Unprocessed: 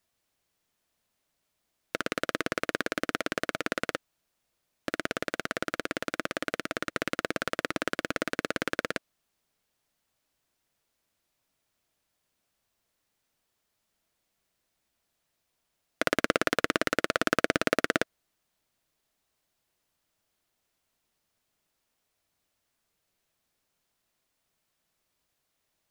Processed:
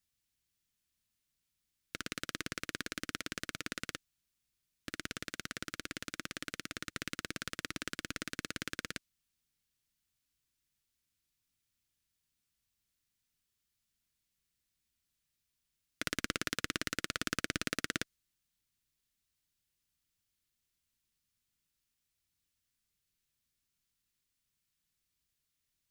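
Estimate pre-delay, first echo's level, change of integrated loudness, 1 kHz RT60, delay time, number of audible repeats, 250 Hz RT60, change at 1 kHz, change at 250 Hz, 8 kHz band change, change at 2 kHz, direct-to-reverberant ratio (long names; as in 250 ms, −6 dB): no reverb audible, no echo audible, −9.0 dB, no reverb audible, no echo audible, no echo audible, no reverb audible, −13.0 dB, −10.0 dB, −1.5 dB, −9.0 dB, no reverb audible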